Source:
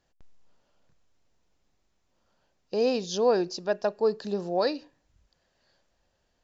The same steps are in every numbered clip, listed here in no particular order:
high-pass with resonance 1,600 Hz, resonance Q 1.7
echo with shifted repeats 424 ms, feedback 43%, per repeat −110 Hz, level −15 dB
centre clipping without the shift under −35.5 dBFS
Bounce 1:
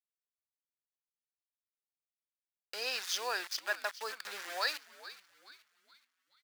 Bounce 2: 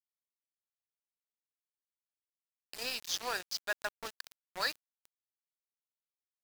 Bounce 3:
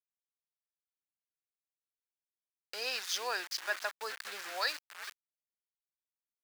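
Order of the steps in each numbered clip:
centre clipping without the shift, then echo with shifted repeats, then high-pass with resonance
echo with shifted repeats, then high-pass with resonance, then centre clipping without the shift
echo with shifted repeats, then centre clipping without the shift, then high-pass with resonance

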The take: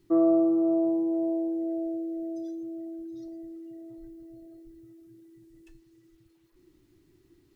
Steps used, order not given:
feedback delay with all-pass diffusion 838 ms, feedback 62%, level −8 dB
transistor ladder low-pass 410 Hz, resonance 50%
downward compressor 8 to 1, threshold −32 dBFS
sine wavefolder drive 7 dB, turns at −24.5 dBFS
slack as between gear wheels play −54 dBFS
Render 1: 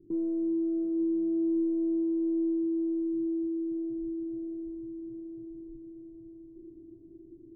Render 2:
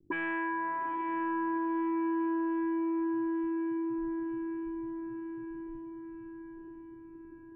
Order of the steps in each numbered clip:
downward compressor, then sine wavefolder, then feedback delay with all-pass diffusion, then slack as between gear wheels, then transistor ladder low-pass
slack as between gear wheels, then transistor ladder low-pass, then sine wavefolder, then downward compressor, then feedback delay with all-pass diffusion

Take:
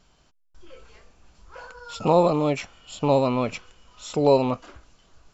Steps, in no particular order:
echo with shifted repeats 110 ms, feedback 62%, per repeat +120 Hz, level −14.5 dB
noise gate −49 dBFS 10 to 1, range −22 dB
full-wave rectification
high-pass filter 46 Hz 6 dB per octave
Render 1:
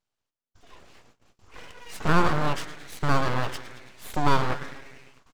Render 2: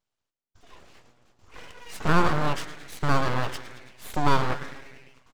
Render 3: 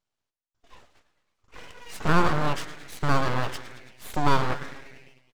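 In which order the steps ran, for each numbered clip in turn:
echo with shifted repeats, then noise gate, then high-pass filter, then full-wave rectification
noise gate, then echo with shifted repeats, then high-pass filter, then full-wave rectification
high-pass filter, then noise gate, then echo with shifted repeats, then full-wave rectification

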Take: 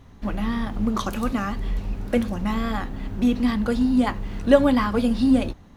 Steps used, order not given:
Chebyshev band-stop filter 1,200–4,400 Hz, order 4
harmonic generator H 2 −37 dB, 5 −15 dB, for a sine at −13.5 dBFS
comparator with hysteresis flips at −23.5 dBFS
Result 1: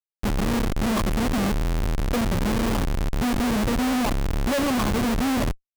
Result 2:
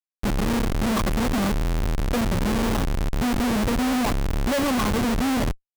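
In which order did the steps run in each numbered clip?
harmonic generator, then Chebyshev band-stop filter, then comparator with hysteresis
Chebyshev band-stop filter, then harmonic generator, then comparator with hysteresis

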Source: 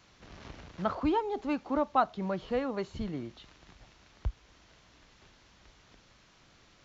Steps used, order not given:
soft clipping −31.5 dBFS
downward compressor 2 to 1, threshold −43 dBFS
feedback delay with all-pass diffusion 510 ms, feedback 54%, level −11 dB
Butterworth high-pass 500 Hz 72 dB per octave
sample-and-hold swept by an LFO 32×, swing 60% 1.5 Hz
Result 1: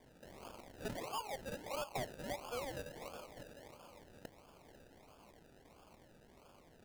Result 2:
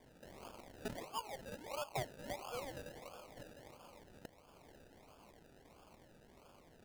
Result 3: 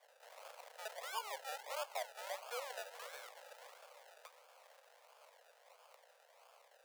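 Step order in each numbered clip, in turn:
Butterworth high-pass, then soft clipping, then downward compressor, then feedback delay with all-pass diffusion, then sample-and-hold swept by an LFO
downward compressor, then feedback delay with all-pass diffusion, then soft clipping, then Butterworth high-pass, then sample-and-hold swept by an LFO
downward compressor, then soft clipping, then feedback delay with all-pass diffusion, then sample-and-hold swept by an LFO, then Butterworth high-pass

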